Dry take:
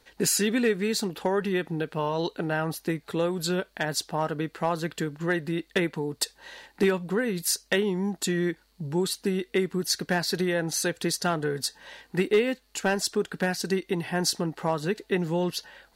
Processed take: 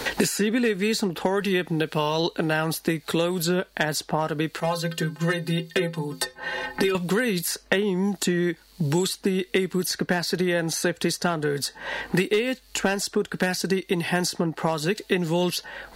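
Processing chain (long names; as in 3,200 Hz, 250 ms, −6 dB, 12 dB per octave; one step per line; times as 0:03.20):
0:04.60–0:06.95: stiff-string resonator 77 Hz, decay 0.29 s, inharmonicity 0.03
multiband upward and downward compressor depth 100%
level +2.5 dB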